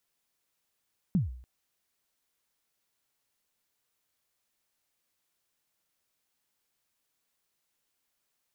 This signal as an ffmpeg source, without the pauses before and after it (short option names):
-f lavfi -i "aevalsrc='0.106*pow(10,-3*t/0.57)*sin(2*PI*(210*0.147/log(62/210)*(exp(log(62/210)*min(t,0.147)/0.147)-1)+62*max(t-0.147,0)))':d=0.29:s=44100"